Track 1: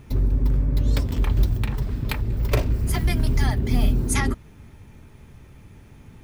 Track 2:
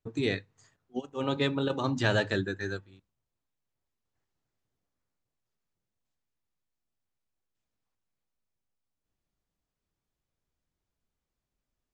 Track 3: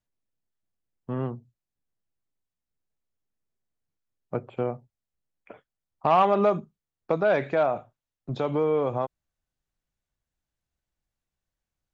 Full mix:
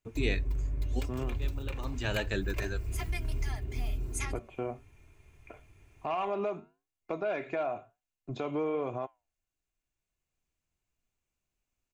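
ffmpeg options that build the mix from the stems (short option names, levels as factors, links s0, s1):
-filter_complex "[0:a]equalizer=f=230:t=o:w=0.73:g=-9.5,adelay=50,volume=0.237[s0];[1:a]volume=0.668[s1];[2:a]flanger=delay=7.2:depth=4.4:regen=-81:speed=1:shape=triangular,volume=0.891,asplit=2[s2][s3];[s3]apad=whole_len=526506[s4];[s1][s4]sidechaincompress=threshold=0.00224:ratio=3:attack=7:release=726[s5];[s0][s2]amix=inputs=2:normalize=0,aecho=1:1:2.9:0.42,alimiter=limit=0.0631:level=0:latency=1:release=311,volume=1[s6];[s5][s6]amix=inputs=2:normalize=0,superequalizer=12b=2:15b=1.78"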